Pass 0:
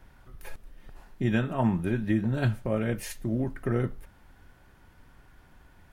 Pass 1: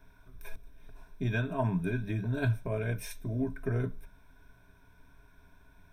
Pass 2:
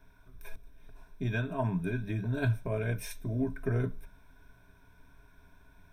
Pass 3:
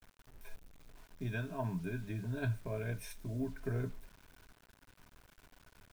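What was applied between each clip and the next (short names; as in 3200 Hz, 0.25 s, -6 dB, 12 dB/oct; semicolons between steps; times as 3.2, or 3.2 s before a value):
ripple EQ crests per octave 1.6, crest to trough 14 dB; gain -6.5 dB
vocal rider 2 s
bit-crush 9-bit; gain -6.5 dB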